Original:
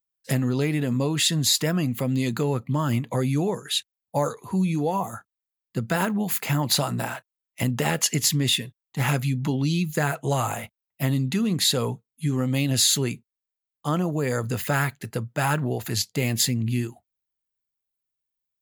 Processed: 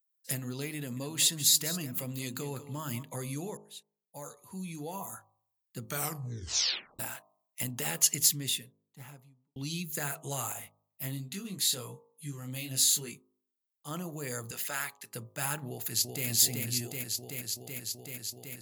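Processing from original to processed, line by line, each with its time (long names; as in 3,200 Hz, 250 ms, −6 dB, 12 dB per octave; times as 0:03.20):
0:00.77–0:03.03: single-tap delay 198 ms −13 dB
0:03.57–0:05.08: fade in
0:05.80: tape stop 1.19 s
0:08.13–0:09.56: fade out and dull
0:10.53–0:13.91: chorus effect 1.2 Hz, delay 20 ms, depth 3.8 ms
0:14.51–0:15.14: meter weighting curve A
0:15.66–0:16.27: delay throw 380 ms, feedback 85%, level −2.5 dB
whole clip: first-order pre-emphasis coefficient 0.8; hum removal 51.88 Hz, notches 24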